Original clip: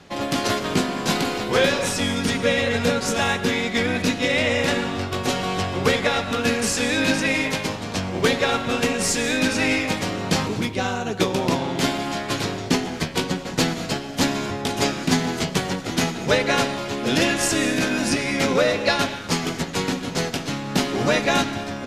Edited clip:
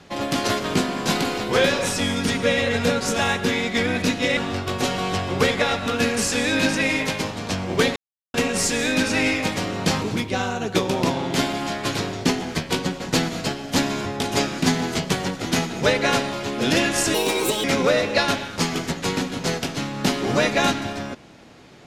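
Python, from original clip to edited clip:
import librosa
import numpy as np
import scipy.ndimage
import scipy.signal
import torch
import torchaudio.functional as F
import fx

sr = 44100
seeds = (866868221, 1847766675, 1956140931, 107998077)

y = fx.edit(x, sr, fx.cut(start_s=4.37, length_s=0.45),
    fx.silence(start_s=8.41, length_s=0.38),
    fx.speed_span(start_s=17.59, length_s=0.76, speed=1.52), tone=tone)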